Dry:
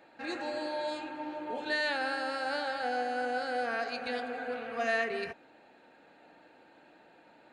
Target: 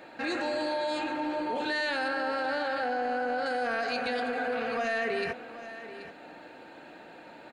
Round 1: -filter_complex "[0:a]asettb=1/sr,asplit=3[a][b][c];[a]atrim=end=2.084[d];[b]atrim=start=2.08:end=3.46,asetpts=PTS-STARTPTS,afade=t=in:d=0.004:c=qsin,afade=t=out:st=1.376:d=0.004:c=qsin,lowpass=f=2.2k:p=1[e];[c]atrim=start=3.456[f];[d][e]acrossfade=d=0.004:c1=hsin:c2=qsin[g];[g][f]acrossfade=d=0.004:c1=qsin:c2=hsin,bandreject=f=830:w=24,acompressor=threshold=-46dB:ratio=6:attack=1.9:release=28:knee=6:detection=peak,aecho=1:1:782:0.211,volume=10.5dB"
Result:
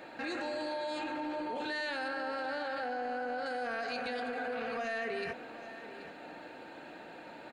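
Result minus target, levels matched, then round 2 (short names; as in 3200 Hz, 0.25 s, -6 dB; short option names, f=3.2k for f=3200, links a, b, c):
compressor: peak gain reduction +6 dB
-filter_complex "[0:a]asettb=1/sr,asplit=3[a][b][c];[a]atrim=end=2.084[d];[b]atrim=start=2.08:end=3.46,asetpts=PTS-STARTPTS,afade=t=in:d=0.004:c=qsin,afade=t=out:st=1.376:d=0.004:c=qsin,lowpass=f=2.2k:p=1[e];[c]atrim=start=3.456[f];[d][e]acrossfade=d=0.004:c1=hsin:c2=qsin[g];[g][f]acrossfade=d=0.004:c1=qsin:c2=hsin,bandreject=f=830:w=24,acompressor=threshold=-38.5dB:ratio=6:attack=1.9:release=28:knee=6:detection=peak,aecho=1:1:782:0.211,volume=10.5dB"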